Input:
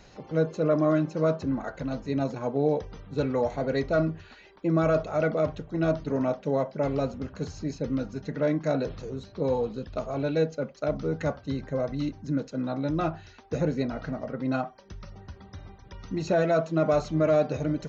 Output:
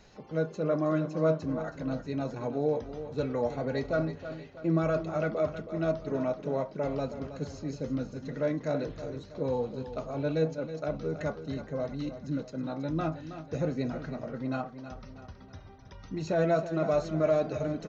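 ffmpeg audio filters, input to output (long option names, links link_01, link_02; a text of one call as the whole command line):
ffmpeg -i in.wav -filter_complex "[0:a]flanger=delay=4.6:depth=4.1:regen=76:speed=0.17:shape=sinusoidal,asplit=2[link_01][link_02];[link_02]aecho=0:1:321|642|963|1284|1605:0.266|0.125|0.0588|0.0276|0.013[link_03];[link_01][link_03]amix=inputs=2:normalize=0" out.wav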